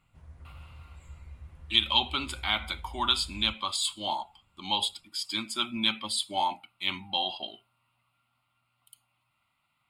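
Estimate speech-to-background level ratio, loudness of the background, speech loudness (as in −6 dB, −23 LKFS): 19.5 dB, −48.5 LKFS, −29.0 LKFS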